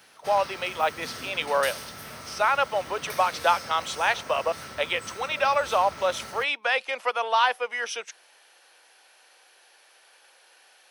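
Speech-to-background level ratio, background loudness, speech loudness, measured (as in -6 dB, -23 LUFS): 13.0 dB, -39.0 LUFS, -26.0 LUFS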